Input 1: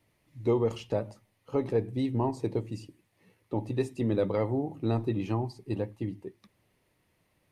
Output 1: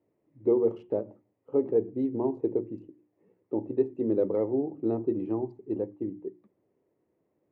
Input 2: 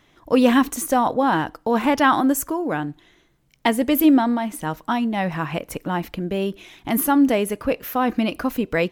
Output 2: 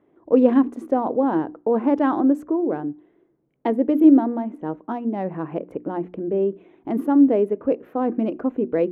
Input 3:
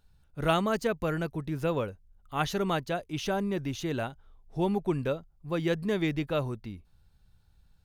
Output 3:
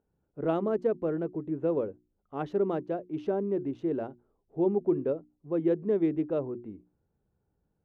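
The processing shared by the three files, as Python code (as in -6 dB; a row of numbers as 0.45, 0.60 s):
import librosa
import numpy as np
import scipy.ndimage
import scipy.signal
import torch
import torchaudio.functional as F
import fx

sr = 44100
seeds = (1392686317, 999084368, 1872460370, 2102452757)

y = fx.wiener(x, sr, points=9)
y = fx.bandpass_q(y, sr, hz=370.0, q=1.9)
y = fx.hum_notches(y, sr, base_hz=60, count=6)
y = F.gain(torch.from_numpy(y), 5.5).numpy()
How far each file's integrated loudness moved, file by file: +1.5, -0.5, +0.5 LU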